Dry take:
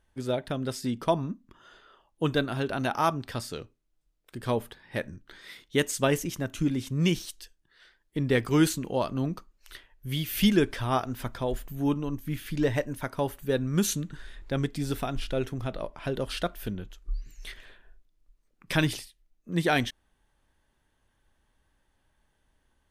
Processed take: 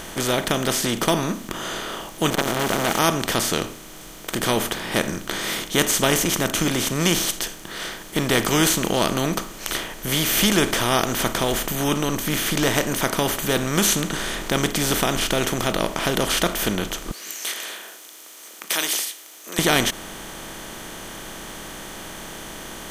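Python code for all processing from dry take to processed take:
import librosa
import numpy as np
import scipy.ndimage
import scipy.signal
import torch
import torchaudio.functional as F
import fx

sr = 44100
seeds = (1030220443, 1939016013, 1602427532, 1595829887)

y = fx.chain(x, sr, fx.high_shelf(hz=2700.0, db=-11.0),
    fx.sample_gate(floor_db=-43.0),
    fx.transformer_sat(knee_hz=1400.0), at=(2.3, 2.99))
y = fx.chain(y, sr, fx.highpass(hz=340.0, slope=24),
    fx.differentiator(), at=(17.11, 19.59))
y = fx.bin_compress(y, sr, power=0.4)
y = fx.high_shelf(y, sr, hz=2100.0, db=10.0)
y = fx.notch(y, sr, hz=2700.0, q=29.0)
y = F.gain(torch.from_numpy(y), -2.0).numpy()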